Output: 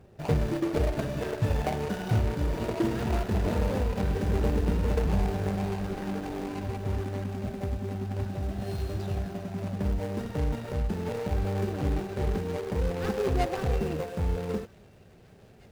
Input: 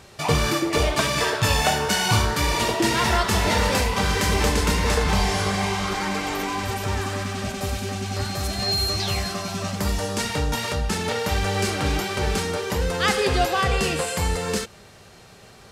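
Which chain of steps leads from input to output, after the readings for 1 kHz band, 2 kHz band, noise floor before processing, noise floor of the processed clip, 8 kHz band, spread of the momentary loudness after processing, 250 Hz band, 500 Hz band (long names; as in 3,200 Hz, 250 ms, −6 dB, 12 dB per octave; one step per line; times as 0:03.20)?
−12.5 dB, −16.5 dB, −48 dBFS, −54 dBFS, −21.5 dB, 6 LU, −3.5 dB, −5.5 dB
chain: running median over 41 samples
delay with a high-pass on its return 1,106 ms, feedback 66%, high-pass 1,700 Hz, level −22 dB
level −3 dB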